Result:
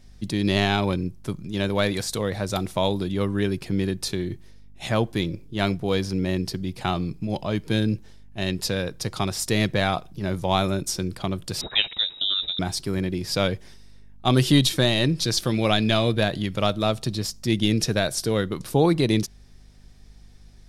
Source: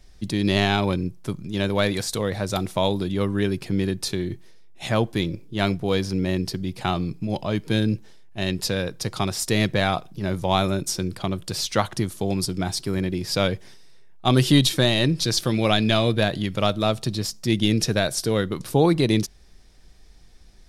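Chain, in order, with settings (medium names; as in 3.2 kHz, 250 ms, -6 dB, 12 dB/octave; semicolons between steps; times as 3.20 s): hum 50 Hz, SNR 28 dB; 11.61–12.59 s: frequency inversion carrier 3.8 kHz; trim -1 dB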